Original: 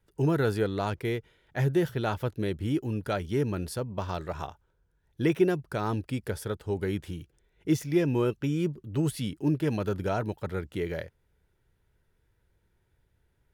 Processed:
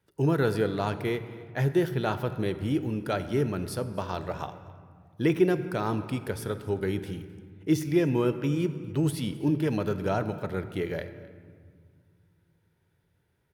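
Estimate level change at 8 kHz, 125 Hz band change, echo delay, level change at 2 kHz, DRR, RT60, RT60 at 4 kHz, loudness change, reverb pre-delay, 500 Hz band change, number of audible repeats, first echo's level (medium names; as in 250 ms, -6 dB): 0.0 dB, +0.5 dB, 261 ms, +1.5 dB, 10.5 dB, 1.8 s, 1.0 s, +1.0 dB, 22 ms, +1.5 dB, 1, -21.5 dB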